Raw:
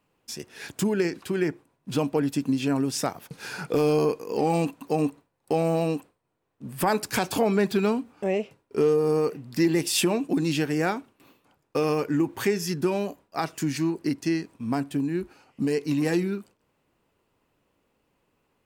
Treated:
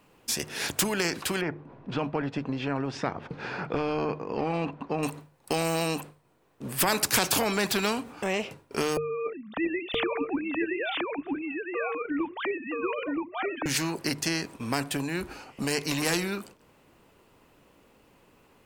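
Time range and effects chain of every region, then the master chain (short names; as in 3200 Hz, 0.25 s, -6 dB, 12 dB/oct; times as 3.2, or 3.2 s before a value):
1.41–5.03 tape spacing loss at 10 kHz 42 dB + upward compressor, threshold -46 dBFS
8.97–13.66 sine-wave speech + echo 0.974 s -3.5 dB
whole clip: notches 50/100/150 Hz; spectral compressor 2:1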